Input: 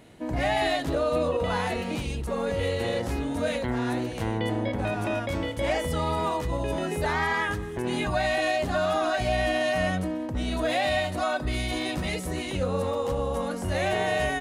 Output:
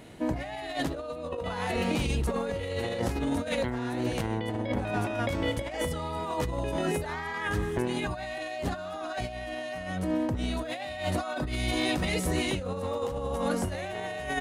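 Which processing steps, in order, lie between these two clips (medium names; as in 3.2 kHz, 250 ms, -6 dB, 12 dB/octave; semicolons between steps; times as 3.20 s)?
compressor with a negative ratio -30 dBFS, ratio -0.5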